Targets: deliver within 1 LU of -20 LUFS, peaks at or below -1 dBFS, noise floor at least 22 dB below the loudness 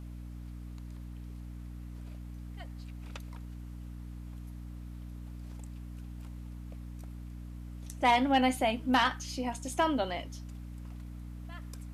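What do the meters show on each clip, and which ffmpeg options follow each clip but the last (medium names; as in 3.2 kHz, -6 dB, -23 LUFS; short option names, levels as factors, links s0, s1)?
hum 60 Hz; highest harmonic 300 Hz; hum level -40 dBFS; loudness -31.0 LUFS; peak level -12.5 dBFS; loudness target -20.0 LUFS
-> -af "bandreject=f=60:t=h:w=6,bandreject=f=120:t=h:w=6,bandreject=f=180:t=h:w=6,bandreject=f=240:t=h:w=6,bandreject=f=300:t=h:w=6"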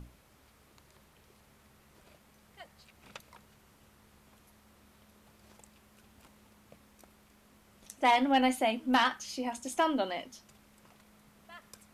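hum not found; loudness -29.5 LUFS; peak level -12.0 dBFS; loudness target -20.0 LUFS
-> -af "volume=2.99"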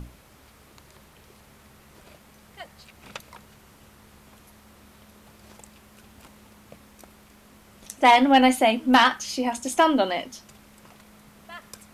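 loudness -20.0 LUFS; peak level -2.5 dBFS; noise floor -54 dBFS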